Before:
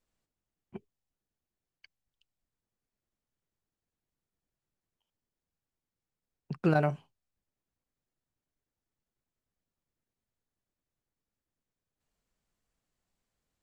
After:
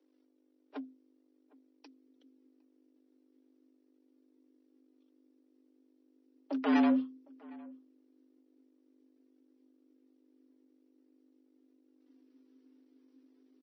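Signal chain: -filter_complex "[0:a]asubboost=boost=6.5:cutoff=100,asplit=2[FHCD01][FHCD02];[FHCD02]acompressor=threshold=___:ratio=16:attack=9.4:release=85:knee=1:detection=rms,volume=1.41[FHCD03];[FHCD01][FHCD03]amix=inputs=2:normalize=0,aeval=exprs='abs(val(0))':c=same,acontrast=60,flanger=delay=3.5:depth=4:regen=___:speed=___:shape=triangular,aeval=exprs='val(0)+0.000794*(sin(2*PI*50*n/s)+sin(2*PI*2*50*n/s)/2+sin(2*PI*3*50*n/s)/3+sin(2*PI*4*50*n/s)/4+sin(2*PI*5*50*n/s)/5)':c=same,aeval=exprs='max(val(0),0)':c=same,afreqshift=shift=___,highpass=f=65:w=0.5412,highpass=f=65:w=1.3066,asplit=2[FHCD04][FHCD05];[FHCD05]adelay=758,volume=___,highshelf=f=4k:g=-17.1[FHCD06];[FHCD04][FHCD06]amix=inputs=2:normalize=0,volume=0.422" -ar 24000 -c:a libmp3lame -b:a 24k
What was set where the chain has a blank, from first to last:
0.0158, -1, 0.42, 260, 0.0708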